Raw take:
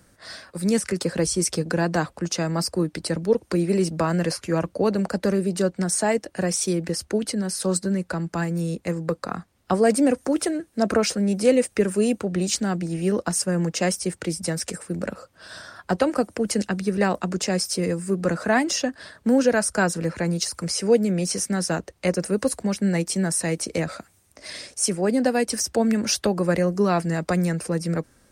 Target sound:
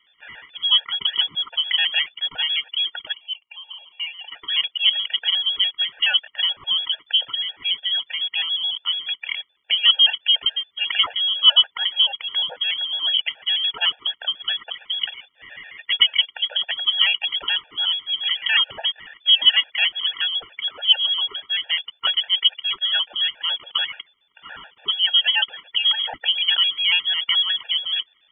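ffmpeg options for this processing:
-filter_complex "[0:a]lowshelf=f=120:g=-5.5,acrusher=bits=8:dc=4:mix=0:aa=0.000001,asettb=1/sr,asplit=3[a][b][c];[a]atrim=end=3.124[d];[b]atrim=start=3.12:end=4.32,asetpts=PTS-STARTPTS,afade=t=in:d=0.004:c=qsin,afade=t=out:st=1.196:d=0.004:c=qsin,asplit=3[e][f][g];[e]bandpass=f=730:t=q:w=8,volume=0dB[h];[f]bandpass=f=1.09k:t=q:w=8,volume=-6dB[i];[g]bandpass=f=2.44k:t=q:w=8,volume=-9dB[j];[h][i][j]amix=inputs=3:normalize=0[k];[c]atrim=start=4.316[l];[d][k]acrossfade=d=0.004:c1=hsin:c2=qsin[m];[m][l]acrossfade=d=0.004:c1=qsin:c2=hsin,lowpass=f=3k:t=q:w=0.5098,lowpass=f=3k:t=q:w=0.6013,lowpass=f=3k:t=q:w=0.9,lowpass=f=3k:t=q:w=2.563,afreqshift=-3500,afftfilt=real='re*gt(sin(2*PI*7*pts/sr)*(1-2*mod(floor(b*sr/1024/470),2)),0)':imag='im*gt(sin(2*PI*7*pts/sr)*(1-2*mod(floor(b*sr/1024/470),2)),0)':win_size=1024:overlap=0.75,volume=6dB"

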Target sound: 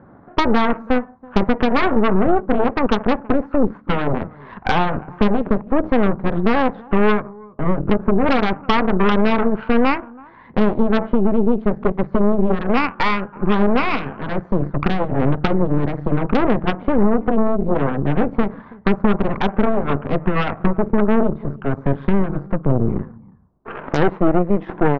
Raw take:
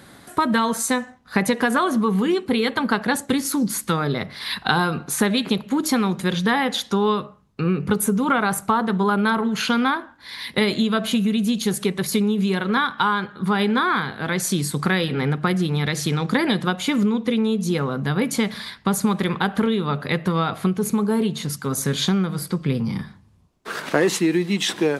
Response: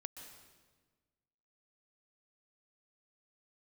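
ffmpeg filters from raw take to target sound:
-af "lowpass=f=1.2k:w=0.5412,lowpass=f=1.2k:w=1.3066,aecho=1:1:327:0.0891,aeval=exprs='0.531*(cos(1*acos(clip(val(0)/0.531,-1,1)))-cos(1*PI/2))+0.0422*(cos(3*acos(clip(val(0)/0.531,-1,1)))-cos(3*PI/2))+0.106*(cos(8*acos(clip(val(0)/0.531,-1,1)))-cos(8*PI/2))':c=same,alimiter=level_in=8.5dB:limit=-1dB:release=50:level=0:latency=1,volume=-4dB"

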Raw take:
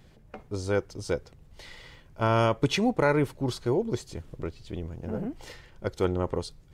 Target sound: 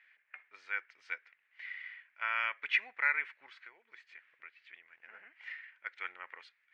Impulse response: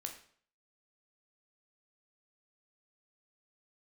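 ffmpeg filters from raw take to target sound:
-filter_complex "[0:a]asettb=1/sr,asplit=3[a][b][c];[a]atrim=end=3.474[d];[b]atrim=start=3.47:end=4.88,asetpts=PTS-STARTPTS,afade=t=in:d=0.004:c=qsin,afade=t=out:st=1.406:d=0.004:c=qsin,acompressor=threshold=-33dB:ratio=4[e];[c]atrim=start=4.876[f];[d][e]acrossfade=d=0.004:c1=hsin:c2=qsin[g];[g][f]acrossfade=d=0.004:c1=qsin:c2=hsin,asuperpass=centerf=2000:order=4:qfactor=2.5,volume=7dB"

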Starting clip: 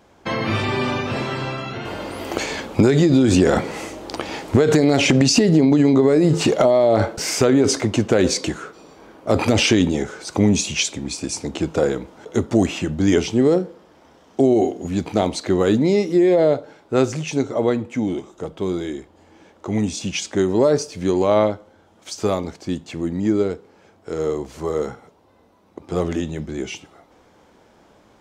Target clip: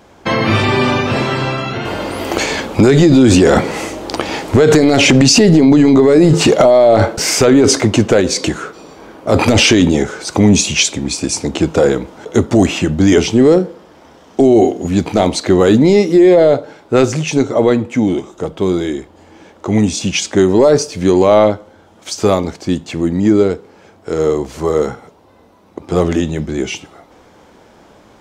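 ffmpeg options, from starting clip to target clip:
-filter_complex "[0:a]asettb=1/sr,asplit=3[a][b][c];[a]atrim=end=8.194[d];[b]atrim=start=8.19:end=9.32,asetpts=PTS-STARTPTS,afade=t=in:d=0.004:c=qsin,afade=t=out:st=1.126:d=0.004:c=qsin,acompressor=threshold=-19dB:ratio=6[e];[c]atrim=start=9.316[f];[d][e]acrossfade=d=0.004:c1=hsin:c2=qsin[g];[g][f]acrossfade=d=0.004:c1=qsin:c2=hsin,apsyclip=11dB,volume=-2.5dB"

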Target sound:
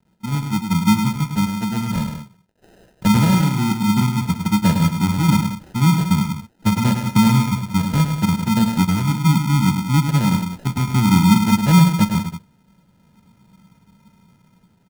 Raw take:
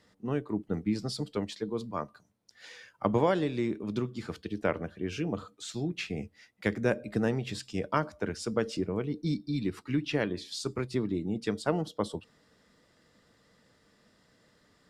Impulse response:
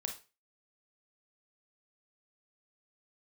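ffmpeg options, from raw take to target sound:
-filter_complex "[0:a]agate=range=-9dB:threshold=-55dB:ratio=16:detection=peak,lowpass=3.6k,lowshelf=f=280:t=q:w=3:g=13.5,dynaudnorm=f=330:g=5:m=11.5dB,acrusher=bits=9:mix=0:aa=0.000001,flanger=delay=5.7:depth=8:regen=-64:speed=1.1:shape=sinusoidal,acrusher=samples=39:mix=1:aa=0.000001,asplit=2[a][b];[b]aecho=0:1:105|183.7:0.447|0.282[c];[a][c]amix=inputs=2:normalize=0"

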